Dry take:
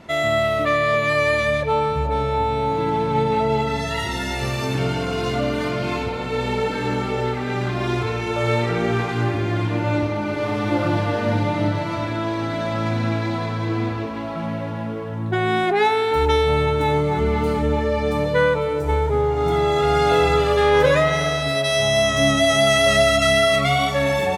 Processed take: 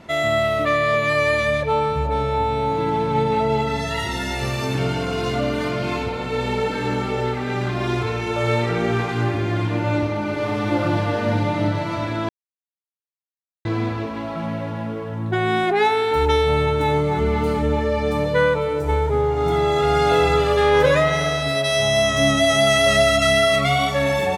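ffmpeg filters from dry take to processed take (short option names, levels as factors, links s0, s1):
-filter_complex "[0:a]asplit=3[s0][s1][s2];[s0]atrim=end=12.29,asetpts=PTS-STARTPTS,afade=t=out:st=12.286:d=0.004:c=hsin[s3];[s1]atrim=start=12.29:end=13.65,asetpts=PTS-STARTPTS,volume=0[s4];[s2]atrim=start=13.65,asetpts=PTS-STARTPTS,afade=t=in:d=0.004:c=hsin[s5];[s3][s4][s5]concat=n=3:v=0:a=1"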